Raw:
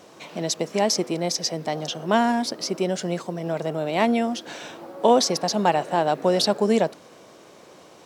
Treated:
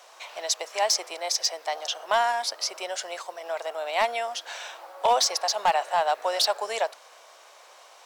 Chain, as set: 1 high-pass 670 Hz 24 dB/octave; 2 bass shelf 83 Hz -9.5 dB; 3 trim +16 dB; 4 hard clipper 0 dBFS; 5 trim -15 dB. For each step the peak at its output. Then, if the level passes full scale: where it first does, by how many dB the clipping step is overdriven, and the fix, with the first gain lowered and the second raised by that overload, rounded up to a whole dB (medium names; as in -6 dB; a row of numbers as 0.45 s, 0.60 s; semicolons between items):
-9.0 dBFS, -9.0 dBFS, +7.0 dBFS, 0.0 dBFS, -15.0 dBFS; step 3, 7.0 dB; step 3 +9 dB, step 5 -8 dB